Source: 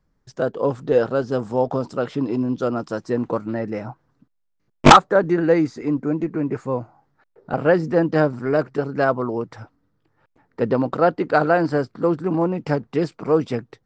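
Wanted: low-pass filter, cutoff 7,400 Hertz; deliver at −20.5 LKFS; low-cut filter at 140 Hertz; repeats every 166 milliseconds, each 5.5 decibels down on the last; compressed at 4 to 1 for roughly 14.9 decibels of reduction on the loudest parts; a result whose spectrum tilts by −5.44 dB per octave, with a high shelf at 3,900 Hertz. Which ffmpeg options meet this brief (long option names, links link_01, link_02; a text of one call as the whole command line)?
ffmpeg -i in.wav -af "highpass=140,lowpass=7400,highshelf=frequency=3900:gain=8,acompressor=threshold=-22dB:ratio=4,aecho=1:1:166|332|498|664|830|996|1162:0.531|0.281|0.149|0.079|0.0419|0.0222|0.0118,volume=5.5dB" out.wav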